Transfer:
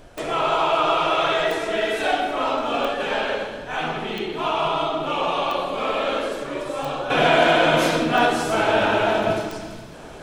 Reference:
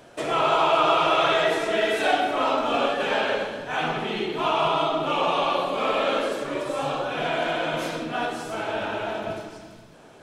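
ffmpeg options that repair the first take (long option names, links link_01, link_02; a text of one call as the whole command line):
ffmpeg -i in.wav -af "adeclick=threshold=4,agate=range=-21dB:threshold=-24dB,asetnsamples=nb_out_samples=441:pad=0,asendcmd='7.1 volume volume -9.5dB',volume=0dB" out.wav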